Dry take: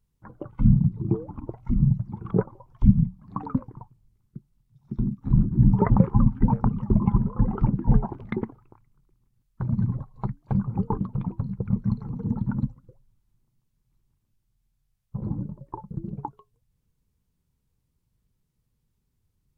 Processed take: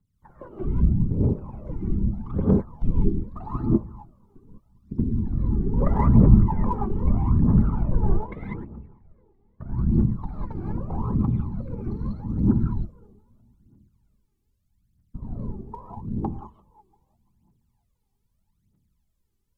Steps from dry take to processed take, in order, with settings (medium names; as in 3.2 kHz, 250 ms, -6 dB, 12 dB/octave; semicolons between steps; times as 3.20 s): feedback echo behind a low-pass 341 ms, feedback 46%, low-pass 1.1 kHz, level -23 dB; whisper effect; 7.67–9.65 s: distance through air 300 m; gated-style reverb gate 220 ms rising, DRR -5 dB; phaser 0.8 Hz, delay 2.7 ms, feedback 71%; trim -9.5 dB